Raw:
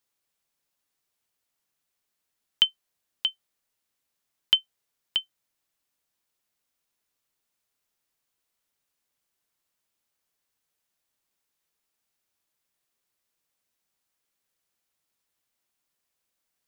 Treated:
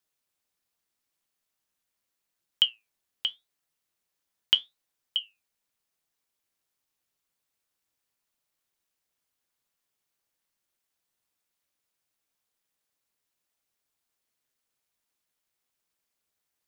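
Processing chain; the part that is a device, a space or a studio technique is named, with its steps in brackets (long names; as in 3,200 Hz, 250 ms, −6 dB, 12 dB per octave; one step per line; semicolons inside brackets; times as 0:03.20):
alien voice (ring modulation 110 Hz; flanger 0.82 Hz, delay 5.8 ms, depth 5.9 ms, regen +76%)
level +5.5 dB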